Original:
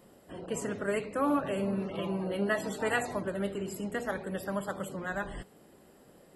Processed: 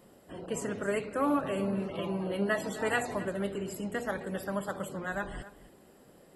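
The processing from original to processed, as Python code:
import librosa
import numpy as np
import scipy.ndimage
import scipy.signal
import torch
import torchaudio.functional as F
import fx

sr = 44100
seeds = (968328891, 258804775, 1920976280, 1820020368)

y = x + 10.0 ** (-16.0 / 20.0) * np.pad(x, (int(265 * sr / 1000.0), 0))[:len(x)]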